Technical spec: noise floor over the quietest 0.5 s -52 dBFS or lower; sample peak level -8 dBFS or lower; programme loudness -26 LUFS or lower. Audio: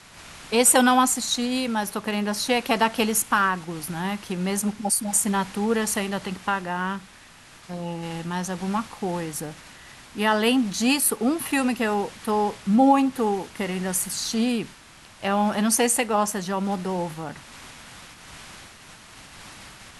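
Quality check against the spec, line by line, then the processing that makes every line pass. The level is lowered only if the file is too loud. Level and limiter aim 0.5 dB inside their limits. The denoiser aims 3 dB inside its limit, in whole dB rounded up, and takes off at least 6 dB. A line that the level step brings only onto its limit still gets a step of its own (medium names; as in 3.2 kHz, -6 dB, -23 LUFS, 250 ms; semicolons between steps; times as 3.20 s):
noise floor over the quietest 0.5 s -49 dBFS: fail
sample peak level -5.0 dBFS: fail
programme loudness -23.5 LUFS: fail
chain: noise reduction 6 dB, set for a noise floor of -49 dBFS; trim -3 dB; peak limiter -8.5 dBFS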